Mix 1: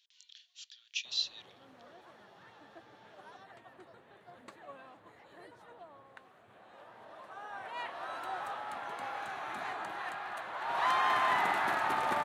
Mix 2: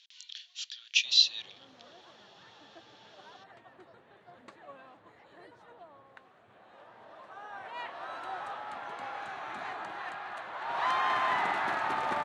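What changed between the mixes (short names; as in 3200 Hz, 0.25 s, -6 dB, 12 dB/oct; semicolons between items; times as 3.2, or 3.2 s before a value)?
speech +11.5 dB; master: add LPF 6800 Hz 12 dB/oct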